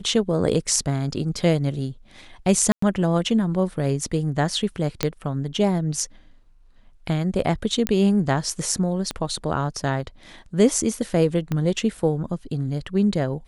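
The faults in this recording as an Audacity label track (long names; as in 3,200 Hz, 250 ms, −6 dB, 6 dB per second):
2.720000	2.820000	drop-out 104 ms
5.030000	5.030000	click −5 dBFS
7.870000	7.870000	click −6 dBFS
9.110000	9.110000	click −13 dBFS
11.520000	11.520000	click −13 dBFS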